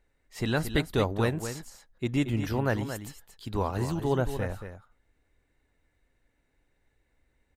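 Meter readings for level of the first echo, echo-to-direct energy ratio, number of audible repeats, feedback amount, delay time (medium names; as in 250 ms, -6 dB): -9.5 dB, -9.5 dB, 1, no regular repeats, 228 ms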